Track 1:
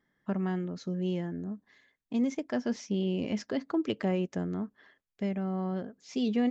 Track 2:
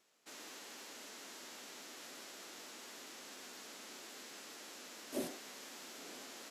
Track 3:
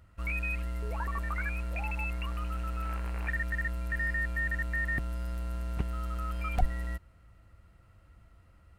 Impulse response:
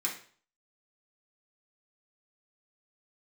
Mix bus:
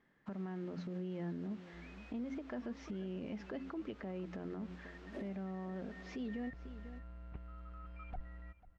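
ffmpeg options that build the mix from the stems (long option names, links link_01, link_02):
-filter_complex "[0:a]bandreject=frequency=88.82:width_type=h:width=4,bandreject=frequency=177.64:width_type=h:width=4,bandreject=frequency=266.46:width_type=h:width=4,acompressor=threshold=-34dB:ratio=12,volume=2.5dB,asplit=2[link_01][link_02];[link_02]volume=-19dB[link_03];[1:a]volume=-5.5dB,asplit=2[link_04][link_05];[link_05]volume=-9.5dB[link_06];[2:a]asoftclip=type=tanh:threshold=-20.5dB,adelay=1550,volume=-15dB,afade=type=in:start_time=6.14:duration=0.24:silence=0.421697,asplit=2[link_07][link_08];[link_08]volume=-17.5dB[link_09];[link_03][link_06][link_09]amix=inputs=3:normalize=0,aecho=0:1:494:1[link_10];[link_01][link_04][link_07][link_10]amix=inputs=4:normalize=0,lowpass=2400,alimiter=level_in=10.5dB:limit=-24dB:level=0:latency=1:release=146,volume=-10.5dB"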